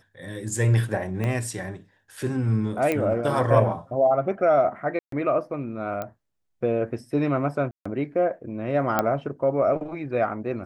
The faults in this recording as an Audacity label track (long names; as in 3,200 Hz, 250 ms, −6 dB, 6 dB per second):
1.240000	1.240000	click −16 dBFS
2.920000	2.920000	click −12 dBFS
4.990000	5.120000	drop-out 133 ms
6.020000	6.020000	click −17 dBFS
7.710000	7.860000	drop-out 145 ms
8.990000	8.990000	click −8 dBFS